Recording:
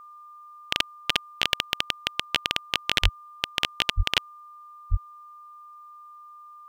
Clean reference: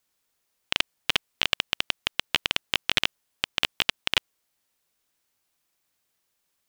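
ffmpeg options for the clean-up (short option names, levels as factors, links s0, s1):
-filter_complex "[0:a]bandreject=f=1200:w=30,asplit=3[s0][s1][s2];[s0]afade=t=out:st=3.02:d=0.02[s3];[s1]highpass=f=140:w=0.5412,highpass=f=140:w=1.3066,afade=t=in:st=3.02:d=0.02,afade=t=out:st=3.14:d=0.02[s4];[s2]afade=t=in:st=3.14:d=0.02[s5];[s3][s4][s5]amix=inputs=3:normalize=0,asplit=3[s6][s7][s8];[s6]afade=t=out:st=3.96:d=0.02[s9];[s7]highpass=f=140:w=0.5412,highpass=f=140:w=1.3066,afade=t=in:st=3.96:d=0.02,afade=t=out:st=4.08:d=0.02[s10];[s8]afade=t=in:st=4.08:d=0.02[s11];[s9][s10][s11]amix=inputs=3:normalize=0,asplit=3[s12][s13][s14];[s12]afade=t=out:st=4.9:d=0.02[s15];[s13]highpass=f=140:w=0.5412,highpass=f=140:w=1.3066,afade=t=in:st=4.9:d=0.02,afade=t=out:st=5.02:d=0.02[s16];[s14]afade=t=in:st=5.02:d=0.02[s17];[s15][s16][s17]amix=inputs=3:normalize=0"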